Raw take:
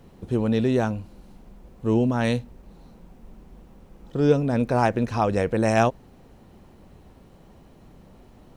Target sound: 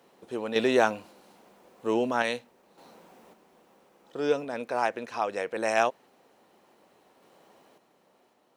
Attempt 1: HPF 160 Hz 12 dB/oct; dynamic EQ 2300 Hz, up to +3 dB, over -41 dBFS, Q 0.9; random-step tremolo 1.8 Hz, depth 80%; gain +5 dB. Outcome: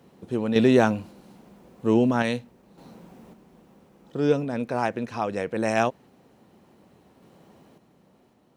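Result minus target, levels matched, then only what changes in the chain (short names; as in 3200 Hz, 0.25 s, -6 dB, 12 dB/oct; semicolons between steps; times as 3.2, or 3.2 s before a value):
125 Hz band +12.5 dB
change: HPF 470 Hz 12 dB/oct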